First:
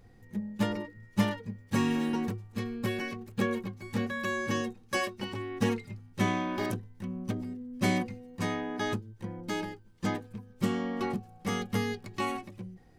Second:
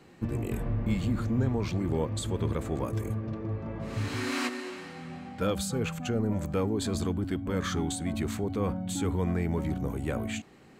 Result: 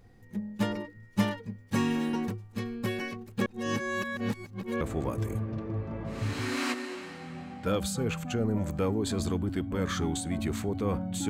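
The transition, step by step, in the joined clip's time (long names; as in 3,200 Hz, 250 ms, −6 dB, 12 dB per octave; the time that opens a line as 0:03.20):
first
0:03.46–0:04.81: reverse
0:04.81: continue with second from 0:02.56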